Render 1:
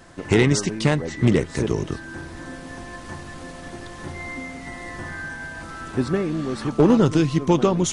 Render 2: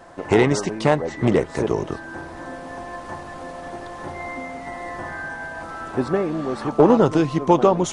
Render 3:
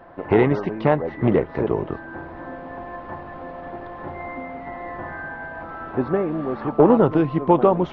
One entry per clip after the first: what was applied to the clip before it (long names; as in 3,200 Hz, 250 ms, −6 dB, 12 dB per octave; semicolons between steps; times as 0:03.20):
parametric band 740 Hz +13.5 dB 2 octaves; level −5 dB
Gaussian smoothing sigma 3.1 samples